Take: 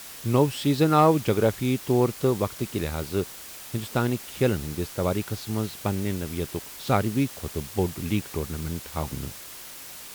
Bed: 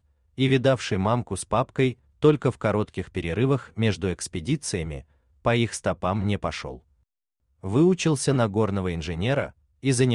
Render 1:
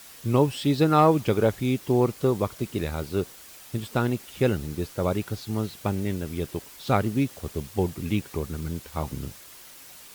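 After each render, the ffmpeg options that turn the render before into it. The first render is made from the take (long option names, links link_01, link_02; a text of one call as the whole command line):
ffmpeg -i in.wav -af "afftdn=noise_reduction=6:noise_floor=-42" out.wav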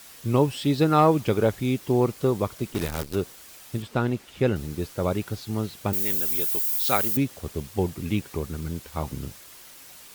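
ffmpeg -i in.wav -filter_complex "[0:a]asplit=3[link_01][link_02][link_03];[link_01]afade=type=out:start_time=2.72:duration=0.02[link_04];[link_02]acrusher=bits=6:dc=4:mix=0:aa=0.000001,afade=type=in:start_time=2.72:duration=0.02,afade=type=out:start_time=3.14:duration=0.02[link_05];[link_03]afade=type=in:start_time=3.14:duration=0.02[link_06];[link_04][link_05][link_06]amix=inputs=3:normalize=0,asettb=1/sr,asplit=3[link_07][link_08][link_09];[link_07]atrim=end=3.824[link_10];[link_08]atrim=start=3.82:end=4.56,asetpts=PTS-STARTPTS,afade=type=in:duration=0.004:curve=qsin,afade=type=out:start_time=0.736:duration=0.004:curve=qsin,lowpass=frequency=4000:poles=1[link_11];[link_09]atrim=start=4.556[link_12];[link_10][link_11]acrossfade=duration=0.004:curve1=hsin:curve2=qsin[link_13];[link_13][link_12]acrossfade=duration=0.004:curve1=qsin:curve2=hsin,asettb=1/sr,asplit=3[link_14][link_15][link_16];[link_14]atrim=end=5.934[link_17];[link_15]atrim=start=5.93:end=7.17,asetpts=PTS-STARTPTS,afade=type=in:duration=0.004:curve=qsin,afade=type=out:start_time=1.236:duration=0.004:curve=qsin,aemphasis=mode=production:type=riaa[link_18];[link_16]atrim=start=7.166[link_19];[link_17][link_18]acrossfade=duration=0.004:curve1=hsin:curve2=qsin[link_20];[link_20][link_19]acrossfade=duration=0.004:curve1=qsin:curve2=hsin" out.wav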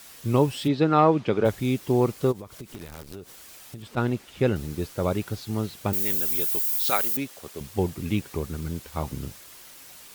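ffmpeg -i in.wav -filter_complex "[0:a]asplit=3[link_01][link_02][link_03];[link_01]afade=type=out:start_time=0.67:duration=0.02[link_04];[link_02]highpass=140,lowpass=3600,afade=type=in:start_time=0.67:duration=0.02,afade=type=out:start_time=1.44:duration=0.02[link_05];[link_03]afade=type=in:start_time=1.44:duration=0.02[link_06];[link_04][link_05][link_06]amix=inputs=3:normalize=0,asplit=3[link_07][link_08][link_09];[link_07]afade=type=out:start_time=2.31:duration=0.02[link_10];[link_08]acompressor=threshold=-35dB:ratio=12:attack=3.2:release=140:knee=1:detection=peak,afade=type=in:start_time=2.31:duration=0.02,afade=type=out:start_time=3.96:duration=0.02[link_11];[link_09]afade=type=in:start_time=3.96:duration=0.02[link_12];[link_10][link_11][link_12]amix=inputs=3:normalize=0,asettb=1/sr,asplit=3[link_13][link_14][link_15];[link_13]atrim=end=6.904[link_16];[link_14]atrim=start=6.9:end=7.61,asetpts=PTS-STARTPTS,afade=type=in:duration=0.004:curve=qsin,afade=type=out:start_time=0.706:duration=0.004:curve=qsin,highpass=frequency=550:poles=1[link_17];[link_15]atrim=start=7.606[link_18];[link_16][link_17]acrossfade=duration=0.004:curve1=hsin:curve2=qsin[link_19];[link_19][link_18]acrossfade=duration=0.004:curve1=qsin:curve2=hsin" out.wav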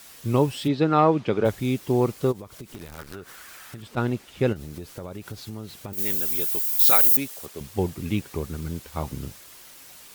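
ffmpeg -i in.wav -filter_complex "[0:a]asettb=1/sr,asplit=3[link_01][link_02][link_03];[link_01]atrim=end=2.984[link_04];[link_02]atrim=start=2.98:end=3.81,asetpts=PTS-STARTPTS,afade=type=in:duration=0.004:curve=qsin,afade=type=out:start_time=0.826:duration=0.004:curve=qsin,equalizer=frequency=1500:width_type=o:width=1.1:gain=12.5[link_05];[link_03]atrim=start=3.806[link_06];[link_04][link_05]acrossfade=duration=0.004:curve1=hsin:curve2=qsin[link_07];[link_07][link_06]acrossfade=duration=0.004:curve1=qsin:curve2=hsin,asplit=3[link_08][link_09][link_10];[link_08]afade=type=out:start_time=4.52:duration=0.02[link_11];[link_09]acompressor=threshold=-31dB:ratio=16:attack=3.2:release=140:knee=1:detection=peak,afade=type=in:start_time=4.52:duration=0.02,afade=type=out:start_time=5.97:duration=0.02[link_12];[link_10]afade=type=in:start_time=5.97:duration=0.02[link_13];[link_11][link_12][link_13]amix=inputs=3:normalize=0,asettb=1/sr,asplit=3[link_14][link_15][link_16];[link_14]atrim=end=6.794[link_17];[link_15]atrim=start=6.79:end=7.46,asetpts=PTS-STARTPTS,afade=type=in:duration=0.004:curve=qsin,afade=type=out:start_time=0.666:duration=0.004:curve=qsin,highshelf=frequency=6600:gain=10[link_18];[link_16]atrim=start=7.456[link_19];[link_17][link_18]acrossfade=duration=0.004:curve1=hsin:curve2=qsin[link_20];[link_20][link_19]acrossfade=duration=0.004:curve1=qsin:curve2=hsin" out.wav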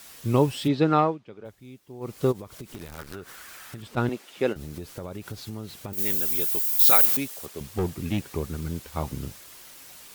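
ffmpeg -i in.wav -filter_complex "[0:a]asettb=1/sr,asplit=3[link_01][link_02][link_03];[link_01]atrim=end=4.094[link_04];[link_02]atrim=start=4.09:end=4.56,asetpts=PTS-STARTPTS,afade=type=in:duration=0.004:curve=qsin,afade=type=out:start_time=0.466:duration=0.004:curve=qsin,highpass=300[link_05];[link_03]atrim=start=4.556[link_06];[link_04][link_05]acrossfade=duration=0.004:curve1=hsin:curve2=qsin[link_07];[link_07][link_06]acrossfade=duration=0.004:curve1=qsin:curve2=hsin,asettb=1/sr,asplit=3[link_08][link_09][link_10];[link_08]atrim=end=7.054[link_11];[link_09]atrim=start=7.05:end=8.32,asetpts=PTS-STARTPTS,afade=type=in:duration=0.004:curve=qsin,afade=type=out:start_time=1.266:duration=0.004:curve=qsin,asoftclip=type=hard:threshold=-20.5dB[link_12];[link_10]atrim=start=8.316[link_13];[link_11][link_12]acrossfade=duration=0.004:curve1=hsin:curve2=qsin[link_14];[link_14][link_13]acrossfade=duration=0.004:curve1=qsin:curve2=hsin,asplit=3[link_15][link_16][link_17];[link_15]atrim=end=1.18,asetpts=PTS-STARTPTS,afade=type=out:start_time=0.94:duration=0.24:silence=0.0944061[link_18];[link_16]atrim=start=1.18:end=2,asetpts=PTS-STARTPTS,volume=-20.5dB[link_19];[link_17]atrim=start=2,asetpts=PTS-STARTPTS,afade=type=in:duration=0.24:silence=0.0944061[link_20];[link_18][link_19][link_20]concat=n=3:v=0:a=1" out.wav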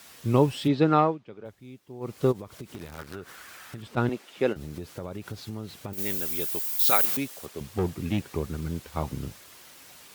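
ffmpeg -i in.wav -af "highpass=57,highshelf=frequency=5800:gain=-5.5" out.wav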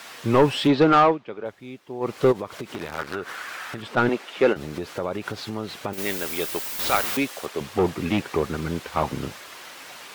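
ffmpeg -i in.wav -filter_complex "[0:a]asplit=2[link_01][link_02];[link_02]highpass=frequency=720:poles=1,volume=21dB,asoftclip=type=tanh:threshold=-6dB[link_03];[link_01][link_03]amix=inputs=2:normalize=0,lowpass=frequency=2100:poles=1,volume=-6dB" out.wav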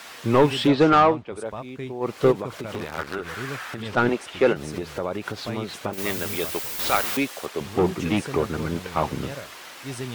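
ffmpeg -i in.wav -i bed.wav -filter_complex "[1:a]volume=-12.5dB[link_01];[0:a][link_01]amix=inputs=2:normalize=0" out.wav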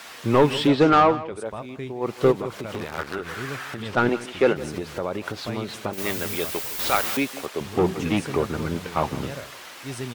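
ffmpeg -i in.wav -af "aecho=1:1:165:0.141" out.wav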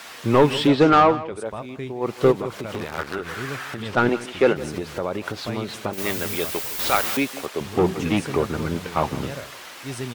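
ffmpeg -i in.wav -af "volume=1.5dB" out.wav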